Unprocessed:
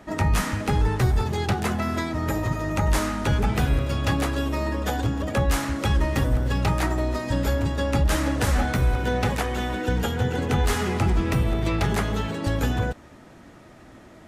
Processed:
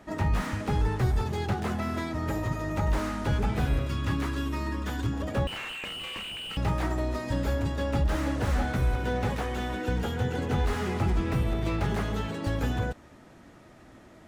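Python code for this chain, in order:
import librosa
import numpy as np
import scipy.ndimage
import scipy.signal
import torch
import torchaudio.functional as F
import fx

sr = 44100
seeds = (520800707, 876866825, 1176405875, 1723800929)

y = fx.spec_box(x, sr, start_s=3.87, length_s=1.26, low_hz=420.0, high_hz=870.0, gain_db=-9)
y = fx.freq_invert(y, sr, carrier_hz=3000, at=(5.47, 6.57))
y = fx.slew_limit(y, sr, full_power_hz=68.0)
y = y * librosa.db_to_amplitude(-4.5)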